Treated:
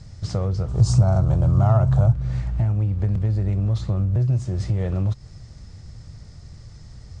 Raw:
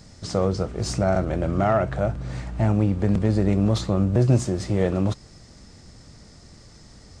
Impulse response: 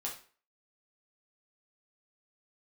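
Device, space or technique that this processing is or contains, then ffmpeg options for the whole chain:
jukebox: -filter_complex "[0:a]lowpass=8000,lowshelf=frequency=170:width_type=q:width=1.5:gain=10,acompressor=threshold=-17dB:ratio=4,asettb=1/sr,asplit=3[link_01][link_02][link_03];[link_01]atrim=end=0.684[link_04];[link_02]atrim=start=0.68:end=2.13,asetpts=PTS-STARTPTS,afade=type=in:duration=0.004:curve=qsin,afade=type=out:start_time=1.446:duration=0.004:curve=qsin,equalizer=frequency=125:width_type=o:width=1:gain=9,equalizer=frequency=1000:width_type=o:width=1:gain=10,equalizer=frequency=2000:width_type=o:width=1:gain=-11,equalizer=frequency=4000:width_type=o:width=1:gain=3,equalizer=frequency=8000:width_type=o:width=1:gain=9[link_05];[link_03]atrim=start=2.126[link_06];[link_04][link_05]acrossfade=duration=0.004:curve1=hsin:curve2=qsin[link_07];[link_07][link_06]acrossfade=duration=0.004:curve1=qsin:curve2=hsin,volume=-2.5dB"

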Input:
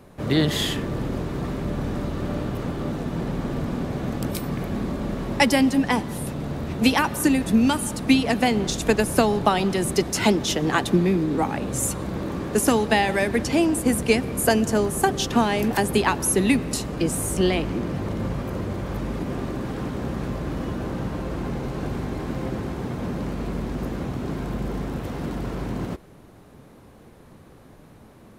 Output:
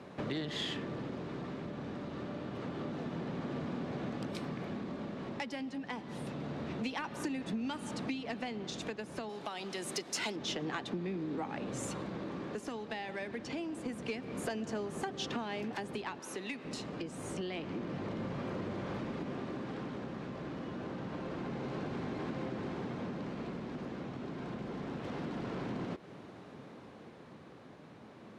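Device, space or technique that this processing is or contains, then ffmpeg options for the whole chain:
AM radio: -filter_complex "[0:a]asettb=1/sr,asplit=3[link_01][link_02][link_03];[link_01]atrim=end=9.294[link_04];[link_02]atrim=start=9.29:end=10.36,asetpts=PTS-STARTPTS,afade=type=in:duration=0.004:curve=qsin,afade=type=out:start_time=1.066:duration=0.004:curve=qsin,aemphasis=mode=production:type=bsi[link_05];[link_03]atrim=start=10.356[link_06];[link_04][link_05]acrossfade=duration=0.004:curve1=hsin:curve2=qsin[link_07];[link_07][link_06]acrossfade=duration=0.004:curve1=qsin:curve2=hsin,asettb=1/sr,asplit=3[link_08][link_09][link_10];[link_08]atrim=end=16.194[link_11];[link_09]atrim=start=16.19:end=16.65,asetpts=PTS-STARTPTS,afade=type=in:duration=0.004:curve=qsin,afade=type=out:start_time=0.456:duration=0.004:curve=qsin,highpass=frequency=570:poles=1[link_12];[link_10]atrim=start=16.646[link_13];[link_11][link_12]acrossfade=duration=0.004:curve1=hsin:curve2=qsin[link_14];[link_14][link_13]acrossfade=duration=0.004:curve1=qsin:curve2=hsin,highpass=150,lowpass=3600,acompressor=threshold=-35dB:ratio=6,asoftclip=type=tanh:threshold=-26dB,tremolo=f=0.27:d=0.33,equalizer=frequency=7300:width=0.42:gain=6"

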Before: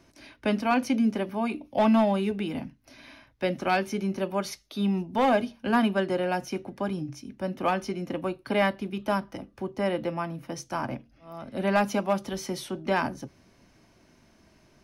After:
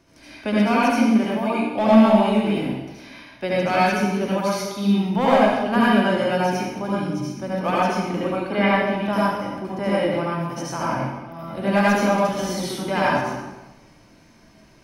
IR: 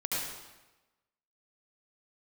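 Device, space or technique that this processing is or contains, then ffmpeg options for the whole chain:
bathroom: -filter_complex "[1:a]atrim=start_sample=2205[link_01];[0:a][link_01]afir=irnorm=-1:irlink=0,asettb=1/sr,asplit=3[link_02][link_03][link_04];[link_02]atrim=end=8.364[link_05];[link_03]atrim=start=8.36:end=9.13,asetpts=PTS-STARTPTS,afade=type=in:duration=0.004:curve=qsin,afade=type=out:start_time=0.766:duration=0.004:curve=qsin,acrossover=split=4100[link_06][link_07];[link_07]acompressor=threshold=-54dB:ratio=4:attack=1:release=60[link_08];[link_06][link_08]amix=inputs=2:normalize=0[link_09];[link_04]atrim=start=9.126[link_10];[link_05][link_09]acrossfade=duration=0.004:curve1=hsin:curve2=qsin[link_11];[link_11][link_10]acrossfade=duration=0.004:curve1=qsin:curve2=hsin,volume=1.5dB"

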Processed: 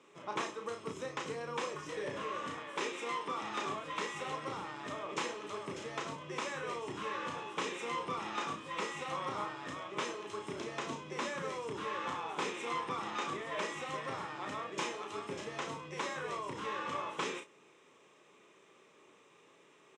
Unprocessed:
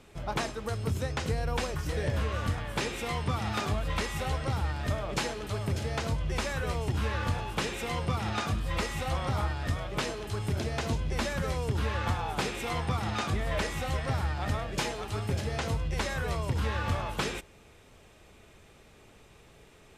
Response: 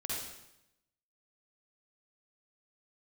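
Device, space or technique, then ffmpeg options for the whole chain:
television speaker: -filter_complex "[0:a]asettb=1/sr,asplit=3[link_01][link_02][link_03];[link_01]atrim=end=2.634[link_04];[link_02]atrim=start=2.63:end=3.42,asetpts=PTS-STARTPTS,afade=type=in:duration=0.004:curve=qsin,afade=type=out:start_time=0.786:duration=0.004:curve=qsin,highpass=210[link_05];[link_03]atrim=start=3.416[link_06];[link_04][link_05]acrossfade=duration=0.004:curve1=hsin:curve2=qsin[link_07];[link_07][link_06]acrossfade=duration=0.004:curve1=qsin:curve2=hsin,highpass=frequency=200:width=0.5412,highpass=frequency=200:width=1.3066,equalizer=frequency=220:width_type=q:width=4:gain=-8,equalizer=frequency=710:width_type=q:width=4:gain=-8,equalizer=frequency=1100:width_type=q:width=4:gain=7,equalizer=frequency=1500:width_type=q:width=4:gain=-4,equalizer=frequency=4500:width_type=q:width=4:gain=-10,lowpass=frequency=7800:width=0.5412,lowpass=frequency=7800:width=1.3066,equalizer=frequency=370:width_type=o:width=0.21:gain=2.5,aecho=1:1:34|60:0.531|0.158,volume=-5dB"

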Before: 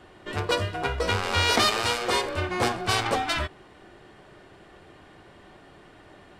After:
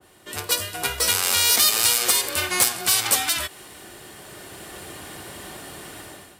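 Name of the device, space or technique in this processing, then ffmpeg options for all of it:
FM broadcast chain: -filter_complex "[0:a]highpass=49,dynaudnorm=framelen=600:gausssize=3:maxgain=15.5dB,acrossover=split=330|950|5500[link_01][link_02][link_03][link_04];[link_01]acompressor=threshold=-32dB:ratio=4[link_05];[link_02]acompressor=threshold=-28dB:ratio=4[link_06];[link_03]acompressor=threshold=-21dB:ratio=4[link_07];[link_04]acompressor=threshold=-32dB:ratio=4[link_08];[link_05][link_06][link_07][link_08]amix=inputs=4:normalize=0,aemphasis=mode=production:type=50fm,alimiter=limit=-9dB:level=0:latency=1:release=307,asoftclip=type=hard:threshold=-12dB,lowpass=frequency=15000:width=0.5412,lowpass=frequency=15000:width=1.3066,aemphasis=mode=production:type=50fm,adynamicequalizer=threshold=0.02:dfrequency=1600:dqfactor=0.7:tfrequency=1600:tqfactor=0.7:attack=5:release=100:ratio=0.375:range=2:mode=boostabove:tftype=highshelf,volume=-4.5dB"

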